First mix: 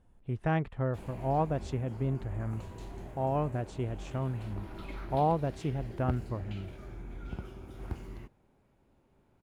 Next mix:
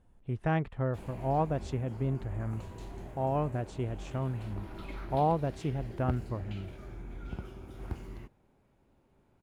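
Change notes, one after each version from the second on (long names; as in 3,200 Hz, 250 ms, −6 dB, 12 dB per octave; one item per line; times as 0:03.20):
nothing changed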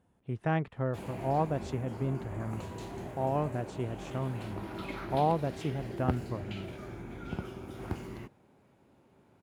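background +6.0 dB
master: add high-pass filter 110 Hz 12 dB per octave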